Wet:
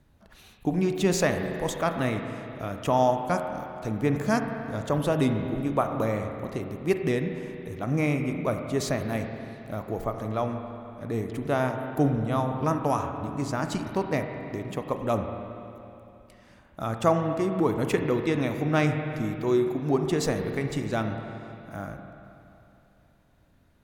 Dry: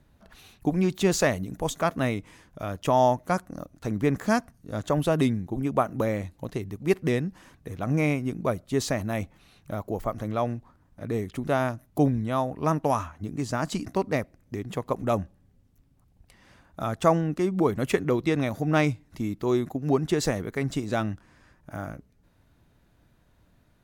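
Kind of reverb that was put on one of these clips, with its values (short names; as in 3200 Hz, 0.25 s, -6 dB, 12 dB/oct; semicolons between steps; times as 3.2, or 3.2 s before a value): spring tank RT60 2.9 s, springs 35/46 ms, chirp 45 ms, DRR 5 dB; gain -1.5 dB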